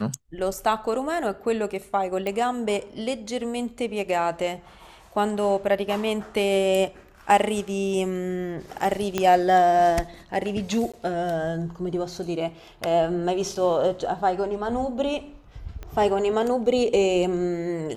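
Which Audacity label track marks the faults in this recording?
2.270000	2.270000	pop
9.180000	9.180000	pop -9 dBFS
10.920000	10.940000	dropout 16 ms
13.550000	13.560000	dropout 5.2 ms
15.830000	15.830000	pop -23 dBFS

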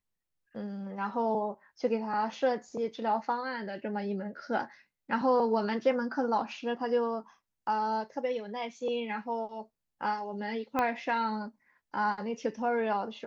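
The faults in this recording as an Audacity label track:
10.790000	10.790000	pop -16 dBFS

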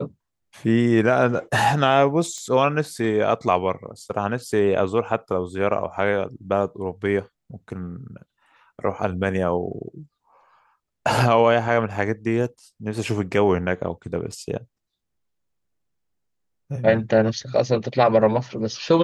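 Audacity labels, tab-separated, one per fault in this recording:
2.380000	2.380000	pop -23 dBFS
14.320000	14.320000	dropout 3.6 ms

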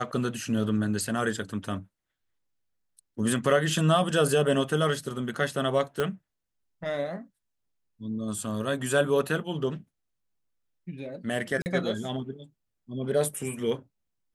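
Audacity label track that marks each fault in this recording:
6.000000	6.000000	pop -14 dBFS
11.620000	11.660000	dropout 39 ms

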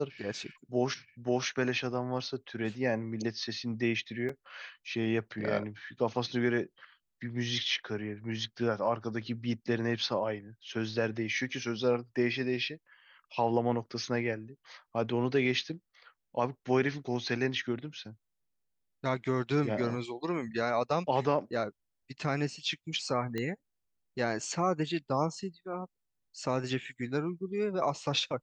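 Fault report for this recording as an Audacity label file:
4.290000	4.290000	dropout 4.1 ms
23.380000	23.380000	pop -21 dBFS

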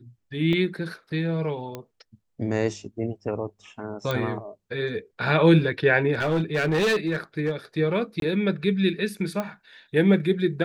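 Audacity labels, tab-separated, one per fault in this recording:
0.530000	0.530000	dropout 2.5 ms
1.750000	1.750000	pop -19 dBFS
4.110000	4.110000	pop -13 dBFS
6.130000	7.510000	clipped -19 dBFS
8.200000	8.220000	dropout 22 ms
9.400000	9.400000	pop -15 dBFS

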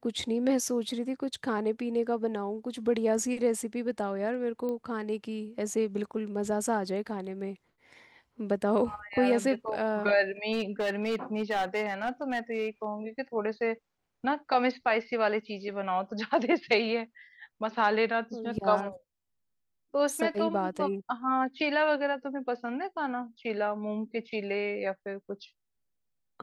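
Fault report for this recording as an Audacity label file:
4.690000	4.690000	pop -24 dBFS
10.520000	12.850000	clipped -24.5 dBFS

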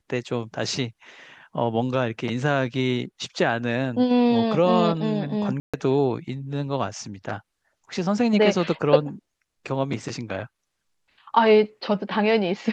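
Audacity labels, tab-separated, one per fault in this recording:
5.600000	5.740000	dropout 136 ms

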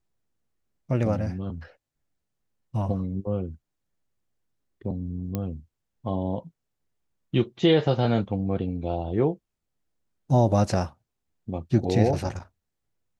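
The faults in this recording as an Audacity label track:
5.350000	5.350000	pop -15 dBFS

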